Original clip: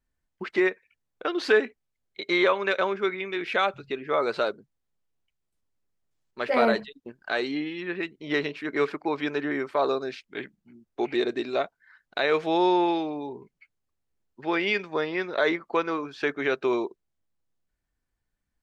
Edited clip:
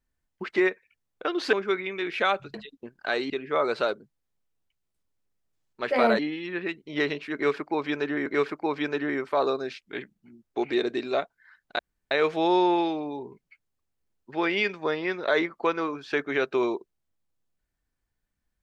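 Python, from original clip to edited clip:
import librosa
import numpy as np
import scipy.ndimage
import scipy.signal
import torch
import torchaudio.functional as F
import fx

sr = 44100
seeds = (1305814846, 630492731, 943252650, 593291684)

y = fx.edit(x, sr, fx.cut(start_s=1.53, length_s=1.34),
    fx.move(start_s=6.77, length_s=0.76, to_s=3.88),
    fx.repeat(start_s=8.68, length_s=0.92, count=2),
    fx.insert_room_tone(at_s=12.21, length_s=0.32), tone=tone)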